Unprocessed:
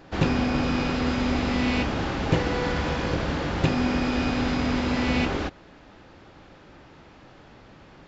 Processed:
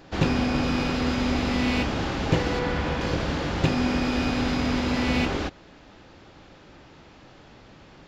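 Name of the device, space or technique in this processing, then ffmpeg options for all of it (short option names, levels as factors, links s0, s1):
exciter from parts: -filter_complex "[0:a]asplit=2[s0][s1];[s1]highpass=2200,asoftclip=type=tanh:threshold=0.0126,volume=0.531[s2];[s0][s2]amix=inputs=2:normalize=0,asettb=1/sr,asplit=3[s3][s4][s5];[s3]atrim=end=2.594[s6];[s4]atrim=start=2.59:end=3.01,asetpts=PTS-STARTPTS,afade=t=in:d=0.004:c=qsin,afade=t=out:st=0.416:d=0.004:c=qsin,acrossover=split=3400[s7][s8];[s8]acompressor=threshold=0.00501:ratio=4:attack=1:release=60[s9];[s7][s9]amix=inputs=2:normalize=0[s10];[s5]atrim=start=3.006[s11];[s6][s10]acrossfade=d=0.004:c1=hsin:c2=qsin[s12];[s12][s11]acrossfade=d=0.004:c1=qsin:c2=hsin"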